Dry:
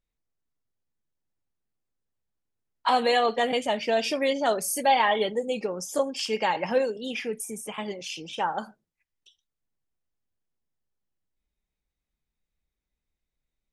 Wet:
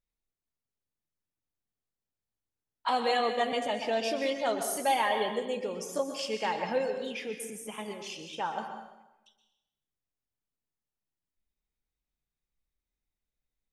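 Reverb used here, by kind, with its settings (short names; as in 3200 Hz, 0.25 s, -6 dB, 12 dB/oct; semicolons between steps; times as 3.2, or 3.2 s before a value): plate-style reverb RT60 1 s, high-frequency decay 0.8×, pre-delay 0.11 s, DRR 6 dB; gain -6 dB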